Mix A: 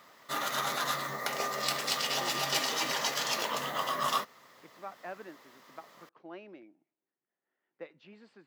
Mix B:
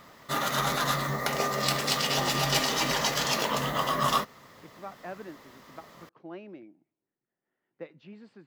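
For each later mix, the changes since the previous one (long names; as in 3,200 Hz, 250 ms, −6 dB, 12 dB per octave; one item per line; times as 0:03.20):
background +3.5 dB
master: remove high-pass filter 500 Hz 6 dB per octave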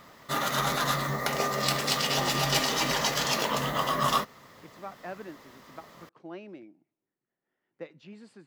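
speech: remove high-frequency loss of the air 140 metres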